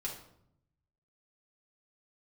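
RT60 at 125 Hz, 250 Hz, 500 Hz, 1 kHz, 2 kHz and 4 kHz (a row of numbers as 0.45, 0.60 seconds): 1.3, 1.0, 0.80, 0.65, 0.55, 0.50 seconds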